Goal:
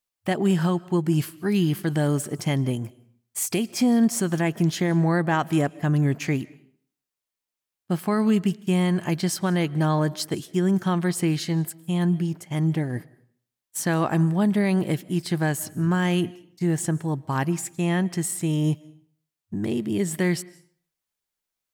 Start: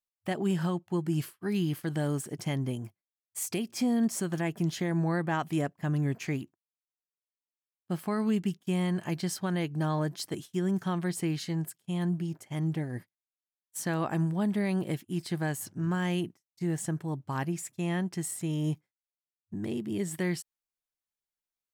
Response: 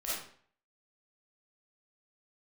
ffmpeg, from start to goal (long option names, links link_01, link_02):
-filter_complex "[0:a]asplit=2[link_01][link_02];[1:a]atrim=start_sample=2205,adelay=108[link_03];[link_02][link_03]afir=irnorm=-1:irlink=0,volume=-25.5dB[link_04];[link_01][link_04]amix=inputs=2:normalize=0,volume=7.5dB"